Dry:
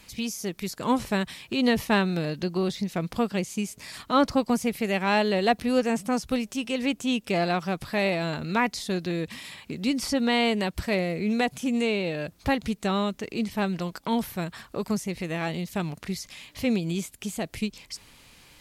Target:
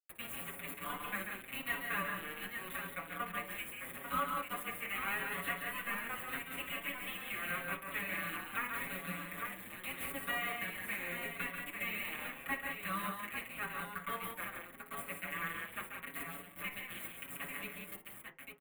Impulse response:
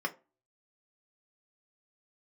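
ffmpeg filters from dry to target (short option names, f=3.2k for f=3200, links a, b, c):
-filter_complex "[0:a]highpass=f=1.3k:w=0.5412,highpass=f=1.3k:w=1.3066,highshelf=f=3.1k:g=-2,acompressor=threshold=-37dB:ratio=3,aeval=exprs='val(0)+0.000708*(sin(2*PI*60*n/s)+sin(2*PI*2*60*n/s)/2+sin(2*PI*3*60*n/s)/3+sin(2*PI*4*60*n/s)/4+sin(2*PI*5*60*n/s)/5)':c=same,acrusher=bits=5:mix=0:aa=0.000001,asuperstop=centerf=5400:order=4:qfactor=0.64,aecho=1:1:57|138|180|846:0.237|0.473|0.473|0.501,asplit=2[a][b];[1:a]atrim=start_sample=2205,lowshelf=f=470:g=10.5[c];[b][c]afir=irnorm=-1:irlink=0,volume=-5.5dB[d];[a][d]amix=inputs=2:normalize=0,asplit=2[e][f];[f]adelay=6.1,afreqshift=0.83[g];[e][g]amix=inputs=2:normalize=1,volume=5dB"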